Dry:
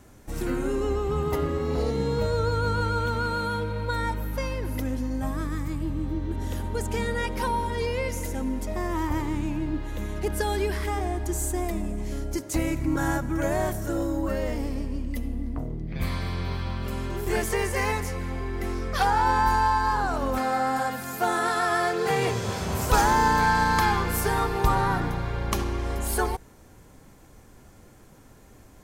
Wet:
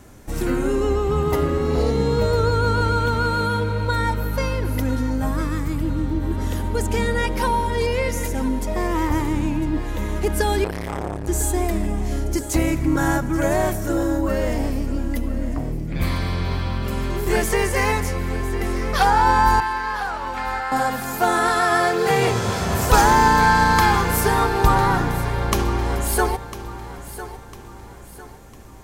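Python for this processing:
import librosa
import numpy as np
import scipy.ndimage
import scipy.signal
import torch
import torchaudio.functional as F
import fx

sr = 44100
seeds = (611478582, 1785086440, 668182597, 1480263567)

y = fx.bandpass_q(x, sr, hz=2200.0, q=1.2, at=(19.6, 20.72))
y = fx.echo_feedback(y, sr, ms=1002, feedback_pct=42, wet_db=-14)
y = fx.transformer_sat(y, sr, knee_hz=700.0, at=(10.64, 11.28))
y = y * librosa.db_to_amplitude(6.0)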